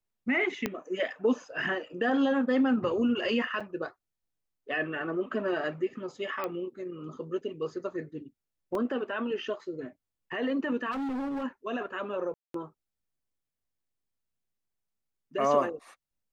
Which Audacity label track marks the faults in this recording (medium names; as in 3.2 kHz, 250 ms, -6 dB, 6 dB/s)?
0.660000	0.660000	pop -14 dBFS
3.600000	3.610000	dropout 5.5 ms
6.440000	6.440000	pop -19 dBFS
8.750000	8.750000	dropout 2.3 ms
10.910000	11.440000	clipped -30.5 dBFS
12.340000	12.540000	dropout 203 ms